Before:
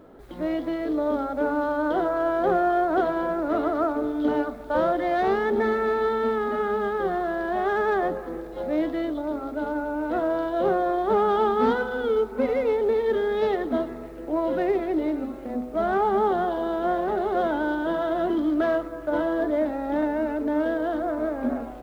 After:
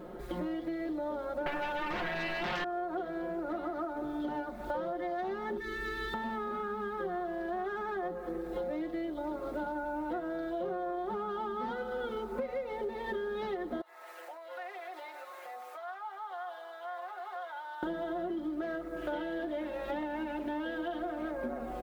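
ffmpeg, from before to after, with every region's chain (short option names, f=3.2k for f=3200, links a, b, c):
-filter_complex "[0:a]asettb=1/sr,asplit=3[a][b][c];[a]atrim=end=1.464[d];[b]atrim=start=1.46:end=2.64,asetpts=PTS-STARTPTS,afade=t=in:d=0.004:c=qsin,afade=t=out:st=1.176:d=0.004:c=qsin,tremolo=f=94:d=0.261,bandreject=f=49.2:t=h:w=4,bandreject=f=98.4:t=h:w=4,bandreject=f=147.6:t=h:w=4,bandreject=f=196.8:t=h:w=4,bandreject=f=246:t=h:w=4,bandreject=f=295.2:t=h:w=4,bandreject=f=344.4:t=h:w=4,bandreject=f=393.6:t=h:w=4,bandreject=f=442.8:t=h:w=4,bandreject=f=492:t=h:w=4,bandreject=f=541.2:t=h:w=4,bandreject=f=590.4:t=h:w=4,bandreject=f=639.6:t=h:w=4,bandreject=f=688.8:t=h:w=4,bandreject=f=738:t=h:w=4,bandreject=f=787.2:t=h:w=4,bandreject=f=836.4:t=h:w=4,bandreject=f=885.6:t=h:w=4,bandreject=f=934.8:t=h:w=4,bandreject=f=984:t=h:w=4,bandreject=f=1.0332k:t=h:w=4,bandreject=f=1.0824k:t=h:w=4,bandreject=f=1.1316k:t=h:w=4,bandreject=f=1.1808k:t=h:w=4,bandreject=f=1.23k:t=h:w=4,bandreject=f=1.2792k:t=h:w=4,bandreject=f=1.3284k:t=h:w=4,bandreject=f=1.3776k:t=h:w=4,bandreject=f=1.4268k:t=h:w=4,bandreject=f=1.476k:t=h:w=4,bandreject=f=1.5252k:t=h:w=4,bandreject=f=1.5744k:t=h:w=4,bandreject=f=1.6236k:t=h:w=4,bandreject=f=1.6728k:t=h:w=4,bandreject=f=1.722k:t=h:w=4,bandreject=f=1.7712k:t=h:w=4,bandreject=f=1.8204k:t=h:w=4,bandreject=f=1.8696k:t=h:w=4,bandreject=f=1.9188k:t=h:w=4,aeval=exprs='0.224*sin(PI/2*5.01*val(0)/0.224)':c=same[e];[c]atrim=start=2.636[f];[d][e]acrossfade=d=0.004:c1=hsin:c2=qsin[g];[g][f]acrossfade=d=0.004:c1=qsin:c2=hsin,asettb=1/sr,asplit=3[h][i][j];[h]atrim=end=5.574[k];[i]atrim=start=5.57:end=6.14,asetpts=PTS-STARTPTS,afade=t=in:d=0.004:c=qsin,afade=t=out:st=0.566:d=0.004:c=qsin,acrossover=split=330|3000[l][m][n];[m]acompressor=threshold=-36dB:ratio=2.5:attack=3.2:release=140:knee=2.83:detection=peak[o];[l][o][n]amix=inputs=3:normalize=0,asuperstop=centerf=710:order=4:qfactor=0.84,aecho=1:1:2.3:0.84,atrim=end_sample=25137[p];[j]atrim=start=6.136[q];[k][p]acrossfade=d=0.004:c1=hsin:c2=qsin[r];[r][q]acrossfade=d=0.004:c1=qsin:c2=hsin,asettb=1/sr,asplit=3[s][t][u];[s]atrim=end=13.814[v];[t]atrim=start=13.81:end=17.83,asetpts=PTS-STARTPTS,afade=t=in:d=0.004:c=qsin,afade=t=out:st=4.016:d=0.004:c=qsin,highpass=f=800:w=0.5412,highpass=f=800:w=1.3066,acompressor=threshold=-46dB:ratio=5:attack=3.2:release=140:knee=1:detection=peak[w];[u]atrim=start=17.826[x];[v][w]acrossfade=d=0.004:c1=hsin:c2=qsin[y];[y][x]acrossfade=d=0.004:c1=qsin:c2=hsin,asettb=1/sr,asplit=3[z][aa][ab];[z]atrim=end=18.964[ac];[aa]atrim=start=18.96:end=21.31,asetpts=PTS-STARTPTS,afade=t=in:d=0.004:c=qsin,afade=t=out:st=2.346:d=0.004:c=qsin,equalizer=f=3k:w=1.7:g=11,bandreject=f=54.53:t=h:w=4,bandreject=f=109.06:t=h:w=4,bandreject=f=163.59:t=h:w=4,bandreject=f=218.12:t=h:w=4,bandreject=f=272.65:t=h:w=4,bandreject=f=327.18:t=h:w=4,bandreject=f=381.71:t=h:w=4,bandreject=f=436.24:t=h:w=4,bandreject=f=490.77:t=h:w=4,bandreject=f=545.3:t=h:w=4,bandreject=f=599.83:t=h:w=4,bandreject=f=654.36:t=h:w=4,bandreject=f=708.89:t=h:w=4,bandreject=f=763.42:t=h:w=4,bandreject=f=817.95:t=h:w=4,bandreject=f=872.48:t=h:w=4,bandreject=f=927.01:t=h:w=4,bandreject=f=981.54:t=h:w=4[ad];[ab]atrim=start=21.306[ae];[ac][ad]acrossfade=d=0.004:c1=hsin:c2=qsin[af];[af][ae]acrossfade=d=0.004:c1=qsin:c2=hsin,aecho=1:1:5.6:0.94,acompressor=threshold=-35dB:ratio=10,volume=1.5dB"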